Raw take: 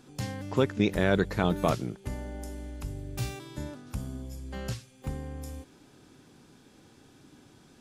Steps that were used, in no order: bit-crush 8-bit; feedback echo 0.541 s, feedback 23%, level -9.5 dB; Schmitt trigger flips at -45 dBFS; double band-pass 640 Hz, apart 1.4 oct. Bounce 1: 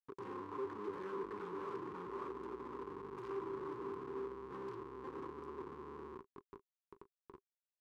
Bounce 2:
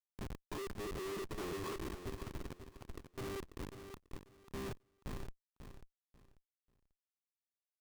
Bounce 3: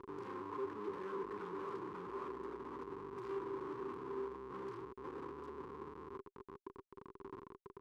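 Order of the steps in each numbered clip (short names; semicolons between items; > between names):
feedback echo > Schmitt trigger > bit-crush > double band-pass; bit-crush > double band-pass > Schmitt trigger > feedback echo; bit-crush > feedback echo > Schmitt trigger > double band-pass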